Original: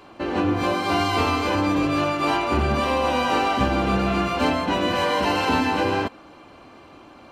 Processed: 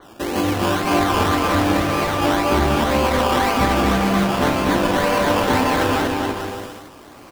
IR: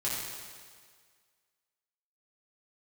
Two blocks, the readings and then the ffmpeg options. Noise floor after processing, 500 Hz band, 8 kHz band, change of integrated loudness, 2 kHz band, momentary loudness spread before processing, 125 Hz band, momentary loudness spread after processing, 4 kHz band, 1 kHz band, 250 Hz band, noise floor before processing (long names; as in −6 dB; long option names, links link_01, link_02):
−42 dBFS, +4.0 dB, +9.0 dB, +3.5 dB, +3.5 dB, 2 LU, +4.5 dB, 5 LU, +3.0 dB, +3.0 dB, +3.5 dB, −47 dBFS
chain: -af "acrusher=samples=17:mix=1:aa=0.000001:lfo=1:lforange=10.2:lforate=1.9,aecho=1:1:240|432|585.6|708.5|806.8:0.631|0.398|0.251|0.158|0.1,adynamicequalizer=threshold=0.0126:dfrequency=4300:dqfactor=0.7:tfrequency=4300:tqfactor=0.7:attack=5:release=100:ratio=0.375:range=3.5:mode=cutabove:tftype=highshelf,volume=2dB"